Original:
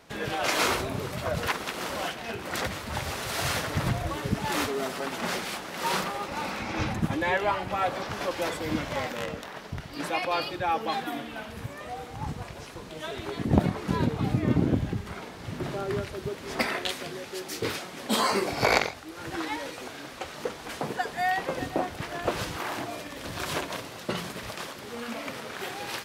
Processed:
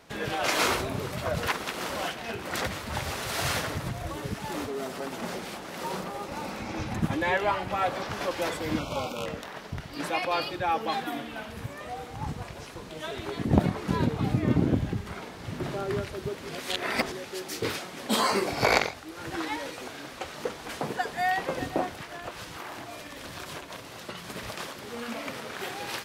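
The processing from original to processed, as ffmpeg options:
-filter_complex "[0:a]asettb=1/sr,asplit=3[a][b][c];[a]atrim=end=3.734[d];[b]atrim=start=3.73:end=6.92,asetpts=PTS-STARTPTS,afade=t=in:d=0.004:c=qsin,afade=t=out:st=3.186:d=0.004:c=qsin,acrossover=split=800|5200[e][f][g];[e]acompressor=threshold=-31dB:ratio=4[h];[f]acompressor=threshold=-41dB:ratio=4[i];[g]acompressor=threshold=-48dB:ratio=4[j];[h][i][j]amix=inputs=3:normalize=0[k];[c]atrim=start=6.916[l];[d][k]acrossfade=d=0.004:c1=hsin:c2=qsin[m];[m][l]acrossfade=d=0.004:c1=qsin:c2=hsin,asettb=1/sr,asplit=3[n][o][p];[n]atrim=end=8.794[q];[o]atrim=start=8.79:end=9.26,asetpts=PTS-STARTPTS,afade=t=in:d=0.004:c=qsin,afade=t=out:st=0.466:d=0.004:c=qsin,asuperstop=centerf=1800:order=12:qfactor=2.4[r];[p]atrim=start=9.256[s];[q][r]acrossfade=d=0.004:c1=hsin:c2=qsin[t];[t][s]acrossfade=d=0.004:c1=qsin:c2=hsin,asettb=1/sr,asplit=3[u][v][w];[u]atrim=end=21.904[x];[v]atrim=start=21.9:end=24.29,asetpts=PTS-STARTPTS,afade=t=in:d=0.004:c=qsin,afade=t=out:st=2.386:d=0.004:c=qsin,acrossover=split=96|780[y][z][aa];[y]acompressor=threshold=-55dB:ratio=4[ab];[z]acompressor=threshold=-44dB:ratio=4[ac];[aa]acompressor=threshold=-40dB:ratio=4[ad];[ab][ac][ad]amix=inputs=3:normalize=0[ae];[w]atrim=start=24.286[af];[x][ae]acrossfade=d=0.004:c1=hsin:c2=qsin[ag];[ag][af]acrossfade=d=0.004:c1=qsin:c2=hsin,asplit=3[ah][ai][aj];[ah]atrim=end=16.492[ak];[ai]atrim=start=16.488:end=17.122,asetpts=PTS-STARTPTS,areverse[al];[aj]atrim=start=17.118[am];[ak][al]acrossfade=d=0.004:c1=hsin:c2=hsin[an];[an][am]acrossfade=d=0.004:c1=hsin:c2=hsin"

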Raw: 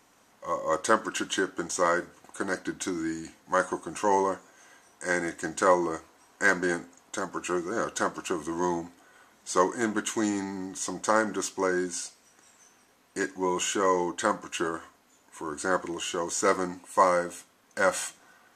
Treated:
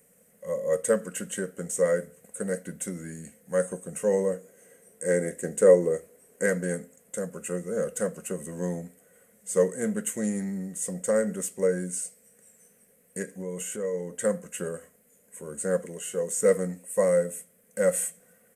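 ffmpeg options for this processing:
-filter_complex "[0:a]asettb=1/sr,asplit=3[a][b][c];[a]atrim=end=4.344[d];[b]atrim=start=4.34:end=6.46,asetpts=PTS-STARTPTS,afade=t=in:d=0.004:c=qsin,afade=t=out:st=2.116:d=0.004:c=qsin,equalizer=f=360:w=1.6:g=8.5[e];[c]atrim=start=6.456[f];[d][e]acrossfade=d=0.004:c1=hsin:c2=qsin[g];[g][f]acrossfade=d=0.004:c1=qsin:c2=hsin,asettb=1/sr,asplit=3[h][i][j];[h]atrim=end=13.224[k];[i]atrim=start=13.22:end=14.14,asetpts=PTS-STARTPTS,afade=t=in:d=0.004:c=qsin,afade=t=out:st=0.916:d=0.004:c=qsin,acompressor=threshold=-29dB:ratio=4:attack=3.2:release=140:knee=1:detection=peak[l];[j]atrim=start=14.136[m];[k][l]acrossfade=d=0.004:c1=hsin:c2=qsin[n];[n][m]acrossfade=d=0.004:c1=qsin:c2=hsin,asettb=1/sr,asplit=3[o][p][q];[o]atrim=end=15.834[r];[p]atrim=start=15.83:end=16.42,asetpts=PTS-STARTPTS,afade=t=in:d=0.004:c=qsin,afade=t=out:st=0.586:d=0.004:c=qsin,lowshelf=f=100:g=-11[s];[q]atrim=start=16.416[t];[r][s]acrossfade=d=0.004:c1=hsin:c2=qsin[u];[u][t]acrossfade=d=0.004:c1=qsin:c2=hsin,firequalizer=gain_entry='entry(100,0);entry(190,12);entry(320,-13);entry(470,12);entry(870,-17);entry(1900,-1);entry(3700,-13);entry(5900,-7);entry(8700,13)':delay=0.05:min_phase=1,volume=-3dB"

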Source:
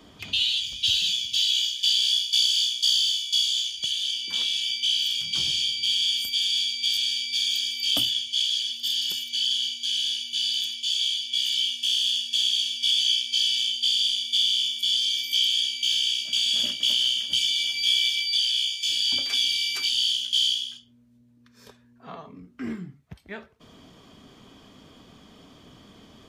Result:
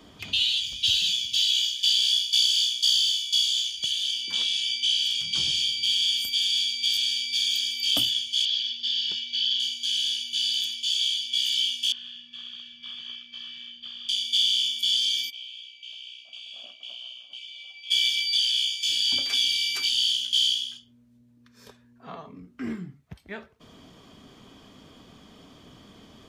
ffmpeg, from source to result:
-filter_complex "[0:a]asettb=1/sr,asplit=3[a][b][c];[a]atrim=end=4.244[d];[b]atrim=start=4.24:end=5.55,asetpts=PTS-STARTPTS,afade=t=in:d=0.004:c=qsin,afade=t=out:st=1.306:d=0.004:c=qsin,lowpass=11k[e];[c]atrim=start=5.546[f];[d][e]acrossfade=d=0.004:c1=hsin:c2=qsin[g];[g][f]acrossfade=d=0.004:c1=qsin:c2=hsin,asettb=1/sr,asplit=3[h][i][j];[h]atrim=end=8.454[k];[i]atrim=start=8.45:end=9.6,asetpts=PTS-STARTPTS,afade=t=in:d=0.004:c=qsin,afade=t=out:st=1.146:d=0.004:c=qsin,lowpass=f=4.9k:w=0.5412,lowpass=f=4.9k:w=1.3066[l];[j]atrim=start=9.596[m];[k][l]acrossfade=d=0.004:c1=hsin:c2=qsin[n];[n][m]acrossfade=d=0.004:c1=qsin:c2=hsin,asettb=1/sr,asplit=3[o][p][q];[o]atrim=end=11.924[r];[p]atrim=start=11.92:end=14.09,asetpts=PTS-STARTPTS,afade=t=in:d=0.004:c=qsin,afade=t=out:st=2.166:d=0.004:c=qsin,lowpass=f=1.2k:t=q:w=6.6[s];[q]atrim=start=14.086[t];[r][s]acrossfade=d=0.004:c1=hsin:c2=qsin[u];[u][t]acrossfade=d=0.004:c1=qsin:c2=hsin,asplit=3[v][w][x];[v]afade=t=out:st=15.29:d=0.02[y];[w]asplit=3[z][aa][ab];[z]bandpass=f=730:t=q:w=8,volume=0dB[ac];[aa]bandpass=f=1.09k:t=q:w=8,volume=-6dB[ad];[ab]bandpass=f=2.44k:t=q:w=8,volume=-9dB[ae];[ac][ad][ae]amix=inputs=3:normalize=0,afade=t=in:st=15.29:d=0.02,afade=t=out:st=17.9:d=0.02[af];[x]afade=t=in:st=17.9:d=0.02[ag];[y][af][ag]amix=inputs=3:normalize=0"

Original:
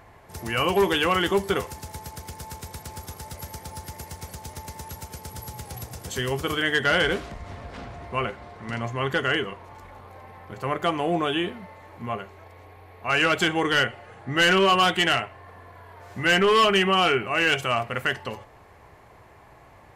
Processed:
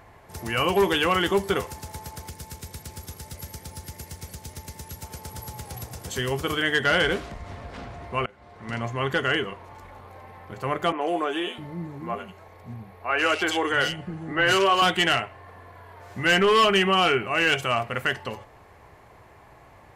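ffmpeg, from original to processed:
-filter_complex "[0:a]asettb=1/sr,asplit=3[a][b][c];[a]atrim=end=2.294[d];[b]atrim=start=2.29:end=5.03,asetpts=PTS-STARTPTS,afade=t=in:d=0.004:c=qsin,afade=t=out:st=2.736:d=0.004:c=qsin,equalizer=f=890:w=0.91:g=-7[e];[c]atrim=start=5.026[f];[d][e]acrossfade=d=0.004:c1=hsin:c2=qsin[g];[g][f]acrossfade=d=0.004:c1=qsin:c2=hsin,asettb=1/sr,asplit=3[h][i][j];[h]atrim=end=10.924[k];[i]atrim=start=10.92:end=14.82,asetpts=PTS-STARTPTS,afade=t=in:d=0.004:c=qsin,afade=t=out:st=3.896:d=0.004:c=qsin,acrossover=split=250|2600[l][m][n];[n]adelay=90[o];[l]adelay=660[p];[p][m][o]amix=inputs=3:normalize=0,atrim=end_sample=171990[q];[j]atrim=start=14.816[r];[k][q]acrossfade=d=0.004:c1=hsin:c2=qsin[s];[s][r]acrossfade=d=0.004:c1=qsin:c2=hsin,asplit=2[t][u];[t]atrim=end=8.26,asetpts=PTS-STARTPTS,afade=t=out:st=8.256:d=0.004:c=hsin:silence=0.0668344[v];[u]atrim=start=8.26,asetpts=PTS-STARTPTS,afade=t=in:d=0.48:silence=0.0668344[w];[v][w]concat=n=2:v=0:a=1"

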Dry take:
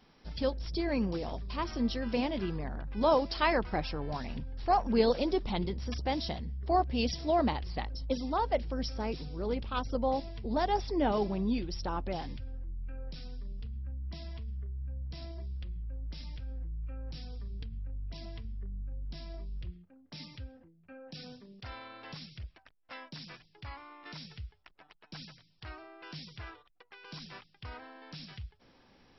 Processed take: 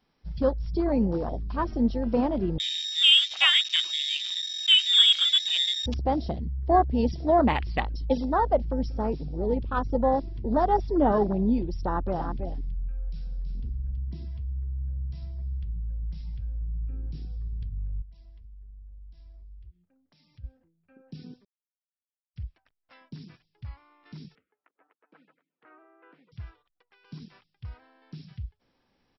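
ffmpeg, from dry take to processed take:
-filter_complex "[0:a]asettb=1/sr,asplit=3[a][b][c];[a]atrim=end=2.584[d];[b]atrim=start=2.58:end=5.86,asetpts=PTS-STARTPTS,afade=t=in:d=0.004:c=qsin,afade=t=out:st=3.276:d=0.004:c=qsin,lowpass=f=3.2k:t=q:w=0.5098,lowpass=f=3.2k:t=q:w=0.6013,lowpass=f=3.2k:t=q:w=0.9,lowpass=f=3.2k:t=q:w=2.563,afreqshift=-3800[e];[c]atrim=start=5.856[f];[d][e]acrossfade=d=0.004:c1=hsin:c2=qsin[g];[g][f]acrossfade=d=0.004:c1=qsin:c2=hsin,asettb=1/sr,asplit=3[h][i][j];[h]atrim=end=7.504[k];[i]atrim=start=7.5:end=8.25,asetpts=PTS-STARTPTS,afade=t=in:d=0.004:c=qsin,afade=t=out:st=0.746:d=0.004:c=qsin,equalizer=f=3k:t=o:w=2.1:g=10.5[l];[j]atrim=start=8.246[m];[k][l]acrossfade=d=0.004:c1=hsin:c2=qsin[n];[n][m]acrossfade=d=0.004:c1=qsin:c2=hsin,asplit=3[o][p][q];[o]afade=t=out:st=12.18:d=0.02[r];[p]aecho=1:1:326:0.473,afade=t=in:st=12.18:d=0.02,afade=t=out:st=14.36:d=0.02[s];[q]afade=t=in:st=14.36:d=0.02[t];[r][s][t]amix=inputs=3:normalize=0,asettb=1/sr,asplit=3[u][v][w];[u]atrim=end=18.024[x];[v]atrim=start=18.02:end=20.44,asetpts=PTS-STARTPTS,afade=t=in:d=0.004:c=qsin,afade=t=out:st=2.416:d=0.004:c=qsin,acompressor=threshold=-53dB:ratio=4:attack=3.2:release=140:knee=1:detection=peak[y];[w]atrim=start=20.436[z];[x][y]acrossfade=d=0.004:c1=hsin:c2=qsin[aa];[aa][z]acrossfade=d=0.004:c1=qsin:c2=hsin,asettb=1/sr,asplit=3[ab][ac][ad];[ab]atrim=end=24.354[ae];[ac]atrim=start=24.35:end=26.32,asetpts=PTS-STARTPTS,afade=t=in:d=0.004:c=qsin,afade=t=out:st=1.966:d=0.004:c=qsin,highpass=f=250:w=0.5412,highpass=f=250:w=1.3066,equalizer=f=280:t=q:w=4:g=6,equalizer=f=480:t=q:w=4:g=9,equalizer=f=1.3k:t=q:w=4:g=5,lowpass=f=2.1k:w=0.5412,lowpass=f=2.1k:w=1.3066[af];[ad]atrim=start=26.316[ag];[ae][af]acrossfade=d=0.004:c1=hsin:c2=qsin[ah];[ah][ag]acrossfade=d=0.004:c1=qsin:c2=hsin,asplit=3[ai][aj][ak];[ai]atrim=end=21.45,asetpts=PTS-STARTPTS,afade=t=out:st=21.446:d=0.004:c=hsin[al];[aj]atrim=start=21.45:end=22.36,asetpts=PTS-STARTPTS,volume=0[am];[ak]atrim=start=22.36,asetpts=PTS-STARTPTS,afade=t=in:d=0.004:c=hsin[an];[al][am][an]concat=n=3:v=0:a=1,afwtdn=0.0141,volume=7dB"

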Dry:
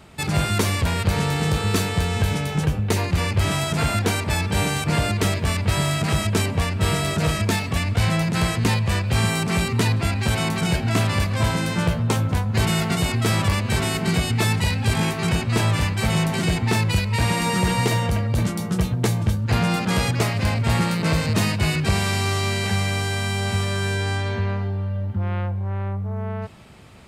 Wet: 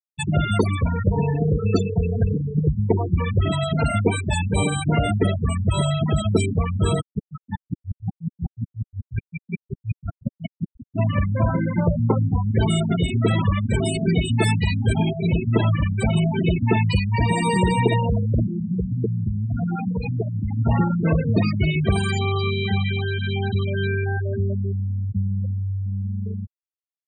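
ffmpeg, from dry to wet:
-filter_complex "[0:a]asettb=1/sr,asplit=3[a][b][c];[a]atrim=end=7.014[d];[b]atrim=start=7.01:end=10.99,asetpts=PTS-STARTPTS,afade=t=in:d=0.004:c=qsin,afade=t=out:st=3.976:d=0.004:c=qsin,aeval=exprs='val(0)*pow(10,-40*if(lt(mod(-5.5*n/s,1),2*abs(-5.5)/1000),1-mod(-5.5*n/s,1)/(2*abs(-5.5)/1000),(mod(-5.5*n/s,1)-2*abs(-5.5)/1000)/(1-2*abs(-5.5)/1000))/20)':c=same[e];[c]atrim=start=10.986[f];[d][e]acrossfade=d=0.004:c1=hsin:c2=qsin[g];[g][f]acrossfade=d=0.004:c1=qsin:c2=hsin,asettb=1/sr,asplit=3[h][i][j];[h]atrim=end=18.434[k];[i]atrim=start=18.43:end=20.59,asetpts=PTS-STARTPTS,afade=t=in:d=0.004:c=qsin,afade=t=out:st=2.156:d=0.004:c=qsin,acompressor=threshold=-22dB:ratio=2.5:attack=3.2:release=140:knee=1:detection=peak[l];[j]atrim=start=20.586[m];[k][l]acrossfade=d=0.004:c1=hsin:c2=qsin[n];[n][m]acrossfade=d=0.004:c1=qsin:c2=hsin,highshelf=f=7.7k:g=9,afftfilt=real='re*gte(hypot(re,im),0.178)':imag='im*gte(hypot(re,im),0.178)':win_size=1024:overlap=0.75,equalizer=f=430:t=o:w=2.3:g=5.5"

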